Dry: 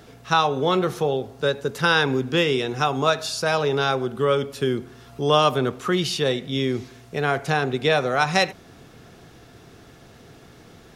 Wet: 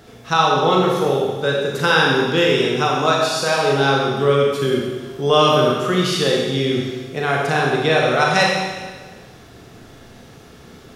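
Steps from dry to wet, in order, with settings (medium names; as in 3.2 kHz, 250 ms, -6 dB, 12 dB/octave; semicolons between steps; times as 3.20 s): Schroeder reverb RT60 1.4 s, combs from 29 ms, DRR -2 dB; trim +1 dB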